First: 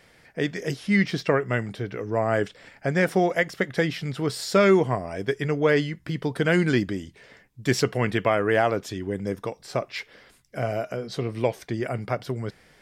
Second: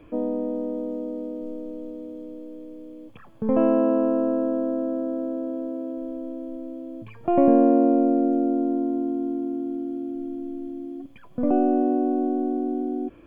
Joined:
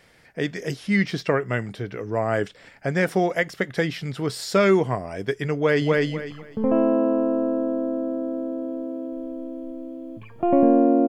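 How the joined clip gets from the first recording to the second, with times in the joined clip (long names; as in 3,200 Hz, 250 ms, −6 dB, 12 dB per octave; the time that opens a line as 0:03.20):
first
0:05.56–0:05.97: delay throw 250 ms, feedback 25%, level −1 dB
0:05.97: continue with second from 0:02.82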